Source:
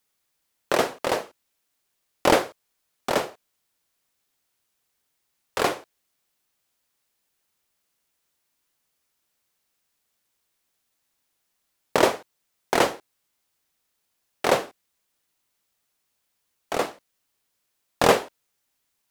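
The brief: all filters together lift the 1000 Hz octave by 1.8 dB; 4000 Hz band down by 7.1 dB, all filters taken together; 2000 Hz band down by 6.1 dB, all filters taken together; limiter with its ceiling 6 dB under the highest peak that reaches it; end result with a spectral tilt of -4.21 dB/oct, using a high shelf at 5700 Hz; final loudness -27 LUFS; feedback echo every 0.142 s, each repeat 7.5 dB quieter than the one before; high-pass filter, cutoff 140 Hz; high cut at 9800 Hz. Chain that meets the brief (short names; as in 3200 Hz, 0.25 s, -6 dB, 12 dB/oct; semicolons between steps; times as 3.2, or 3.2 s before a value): HPF 140 Hz; LPF 9800 Hz; bell 1000 Hz +4.5 dB; bell 2000 Hz -8 dB; bell 4000 Hz -4 dB; high shelf 5700 Hz -7 dB; limiter -9 dBFS; feedback echo 0.142 s, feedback 42%, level -7.5 dB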